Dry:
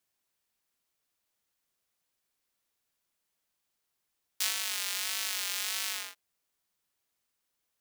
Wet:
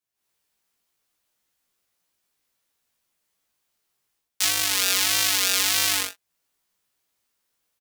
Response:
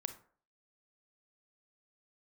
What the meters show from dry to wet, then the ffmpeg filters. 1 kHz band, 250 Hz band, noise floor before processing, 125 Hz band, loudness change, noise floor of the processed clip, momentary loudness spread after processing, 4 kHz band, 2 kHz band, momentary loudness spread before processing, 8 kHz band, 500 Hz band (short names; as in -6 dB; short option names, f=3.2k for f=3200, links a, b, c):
+12.5 dB, +21.5 dB, -82 dBFS, n/a, +11.5 dB, -81 dBFS, 6 LU, +11.5 dB, +11.0 dB, 5 LU, +11.5 dB, +15.0 dB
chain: -filter_complex "[0:a]asplit=2[a][b];[b]alimiter=limit=-16dB:level=0:latency=1:release=261,volume=-0.5dB[c];[a][c]amix=inputs=2:normalize=0,asplit=2[d][e];[e]adelay=17,volume=-3dB[f];[d][f]amix=inputs=2:normalize=0,dynaudnorm=f=130:g=3:m=13dB,aeval=exprs='0.944*(cos(1*acos(clip(val(0)/0.944,-1,1)))-cos(1*PI/2))+0.0422*(cos(5*acos(clip(val(0)/0.944,-1,1)))-cos(5*PI/2))+0.15*(cos(7*acos(clip(val(0)/0.944,-1,1)))-cos(7*PI/2))':c=same,acontrast=46,volume=-1.5dB"